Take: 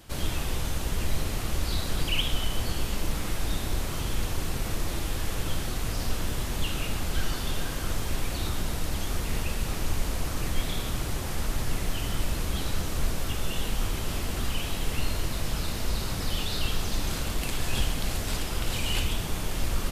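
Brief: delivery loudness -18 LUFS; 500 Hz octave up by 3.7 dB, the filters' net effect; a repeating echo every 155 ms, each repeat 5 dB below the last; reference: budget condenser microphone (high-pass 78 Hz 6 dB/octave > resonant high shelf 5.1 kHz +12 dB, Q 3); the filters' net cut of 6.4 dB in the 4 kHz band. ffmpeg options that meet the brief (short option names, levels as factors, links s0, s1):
-af "highpass=f=78:p=1,equalizer=f=500:t=o:g=5,equalizer=f=4000:t=o:g=-8.5,highshelf=f=5100:t=q:w=3:g=12,aecho=1:1:155|310|465|620|775|930|1085:0.562|0.315|0.176|0.0988|0.0553|0.031|0.0173,volume=1.78"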